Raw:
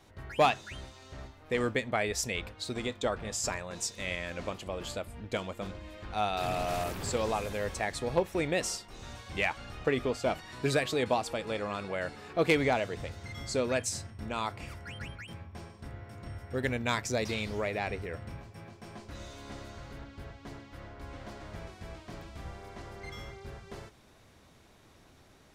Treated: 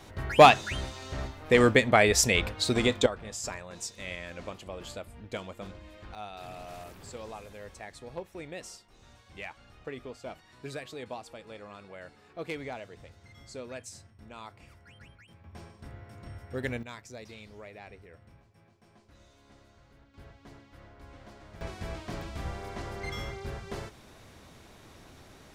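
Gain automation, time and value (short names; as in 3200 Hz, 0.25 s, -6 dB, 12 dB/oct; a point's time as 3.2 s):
+9.5 dB
from 3.06 s -3.5 dB
from 6.15 s -11.5 dB
from 15.44 s -2 dB
from 16.83 s -14 dB
from 20.14 s -6 dB
from 21.61 s +6.5 dB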